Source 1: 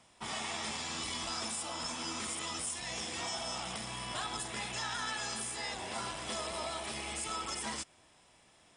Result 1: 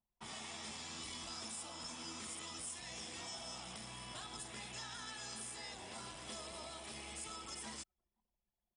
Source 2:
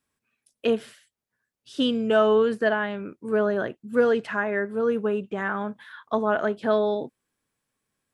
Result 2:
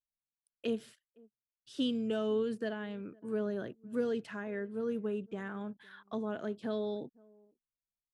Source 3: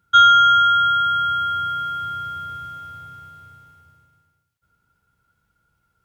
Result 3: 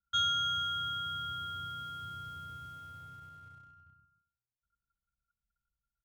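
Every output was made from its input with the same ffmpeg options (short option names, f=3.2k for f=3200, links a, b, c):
-filter_complex "[0:a]acrossover=split=420|3000[a][b][c];[b]acompressor=threshold=-46dB:ratio=2[d];[a][d][c]amix=inputs=3:normalize=0,asplit=2[e][f];[f]adelay=507.3,volume=-26dB,highshelf=f=4k:g=-11.4[g];[e][g]amix=inputs=2:normalize=0,anlmdn=0.001,volume=-7.5dB"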